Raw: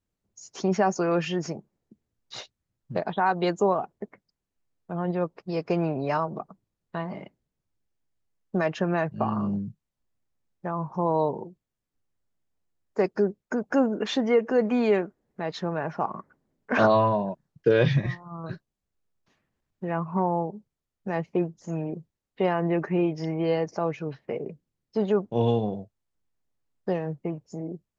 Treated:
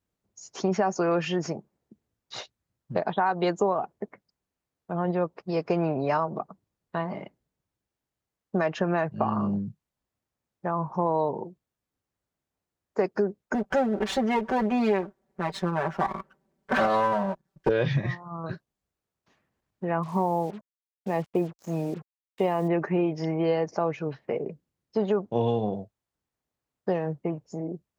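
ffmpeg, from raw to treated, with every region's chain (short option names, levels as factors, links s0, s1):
-filter_complex "[0:a]asettb=1/sr,asplit=3[s0][s1][s2];[s0]atrim=end=13.544[s3];[s1]atrim=start=13.54:end=17.69,asetpts=PTS-STARTPTS,afade=t=in:d=0.004:c=qsin,afade=t=out:st=4.146:d=0.004:c=qsin,aeval=exprs='if(lt(val(0),0),0.251*val(0),val(0))':c=same,aecho=1:1:5.2:0.95,atrim=end_sample=183015[s4];[s2]atrim=start=17.686[s5];[s3][s4]acrossfade=d=0.004:c1=hsin:c2=qsin[s6];[s6][s5]acrossfade=d=0.004:c1=qsin:c2=hsin,asettb=1/sr,asplit=3[s7][s8][s9];[s7]atrim=end=20.034[s10];[s8]atrim=start=20.03:end=22.68,asetpts=PTS-STARTPTS,afade=t=in:d=0.004:c=qsin,afade=t=out:st=2.646:d=0.004:c=qsin,equalizer=f=1500:t=o:w=0.38:g=-12,acrusher=bits=7:mix=0:aa=0.5[s11];[s9]atrim=start=22.676[s12];[s10][s11]acrossfade=d=0.004:c1=hsin:c2=qsin[s13];[s13][s12]acrossfade=d=0.004:c1=qsin:c2=hsin,highpass=42,equalizer=f=850:w=0.55:g=3.5,acompressor=threshold=0.1:ratio=5"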